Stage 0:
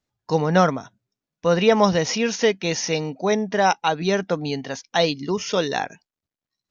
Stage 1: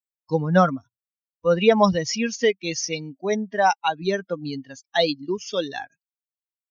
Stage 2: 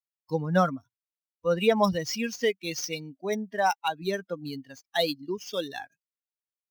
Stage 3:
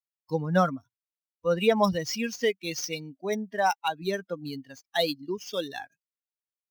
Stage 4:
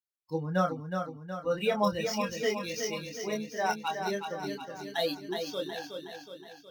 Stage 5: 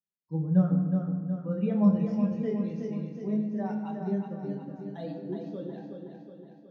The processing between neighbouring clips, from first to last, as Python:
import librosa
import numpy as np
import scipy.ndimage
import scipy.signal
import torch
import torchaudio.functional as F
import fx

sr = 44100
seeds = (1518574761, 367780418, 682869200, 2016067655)

y1 = fx.bin_expand(x, sr, power=2.0)
y1 = y1 * 10.0 ** (2.5 / 20.0)
y2 = scipy.signal.medfilt(y1, 5)
y2 = fx.high_shelf(y2, sr, hz=4300.0, db=6.0)
y2 = y2 * 10.0 ** (-6.0 / 20.0)
y3 = y2
y4 = fx.chorus_voices(y3, sr, voices=4, hz=0.41, base_ms=26, depth_ms=2.0, mix_pct=40)
y4 = fx.echo_feedback(y4, sr, ms=368, feedback_pct=54, wet_db=-6.0)
y4 = y4 * 10.0 ** (-1.5 / 20.0)
y5 = fx.bandpass_q(y4, sr, hz=190.0, q=2.0)
y5 = fx.room_shoebox(y5, sr, seeds[0], volume_m3=1500.0, walls='mixed', distance_m=1.2)
y5 = y5 * 10.0 ** (7.0 / 20.0)